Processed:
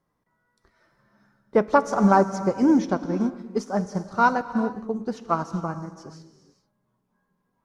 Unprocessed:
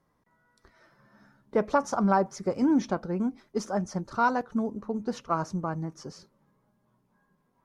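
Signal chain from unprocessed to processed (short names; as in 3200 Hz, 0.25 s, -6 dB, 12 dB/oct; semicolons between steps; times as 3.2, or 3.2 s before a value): non-linear reverb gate 0.46 s flat, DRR 8 dB; upward expander 1.5:1, over -40 dBFS; gain +6.5 dB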